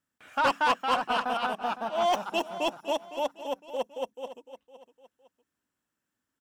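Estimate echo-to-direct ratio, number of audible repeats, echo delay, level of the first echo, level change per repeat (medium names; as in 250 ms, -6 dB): -13.5 dB, 2, 509 ms, -14.0 dB, -9.0 dB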